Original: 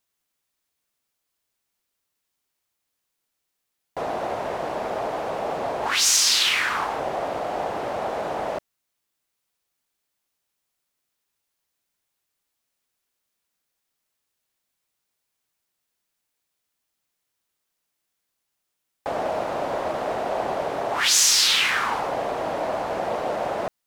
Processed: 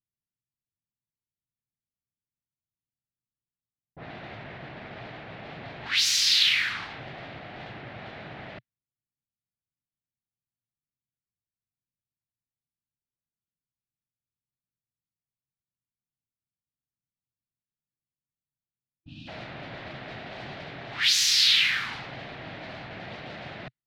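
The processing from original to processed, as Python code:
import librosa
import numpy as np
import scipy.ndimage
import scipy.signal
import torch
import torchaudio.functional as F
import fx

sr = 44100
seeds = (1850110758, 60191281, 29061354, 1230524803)

y = fx.env_lowpass(x, sr, base_hz=320.0, full_db=-19.0)
y = fx.graphic_eq(y, sr, hz=(125, 500, 1000, 2000, 4000, 8000), db=(11, -10, -10, 7, 10, -7))
y = fx.spec_box(y, sr, start_s=18.97, length_s=0.31, low_hz=330.0, high_hz=2400.0, gain_db=-30)
y = y * 10.0 ** (-8.0 / 20.0)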